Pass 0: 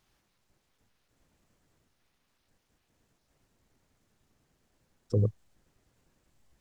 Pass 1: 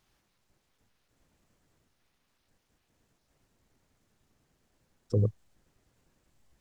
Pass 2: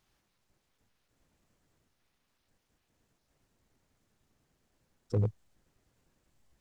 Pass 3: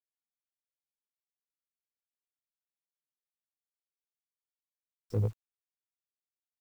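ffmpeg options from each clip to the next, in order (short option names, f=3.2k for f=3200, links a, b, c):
-af anull
-af "asoftclip=type=hard:threshold=-19.5dB,volume=-2.5dB"
-filter_complex "[0:a]flanger=delay=16.5:depth=6.7:speed=0.35,acrossover=split=750[a][b];[a]crystalizer=i=7:c=0[c];[c][b]amix=inputs=2:normalize=0,acrusher=bits=9:mix=0:aa=0.000001"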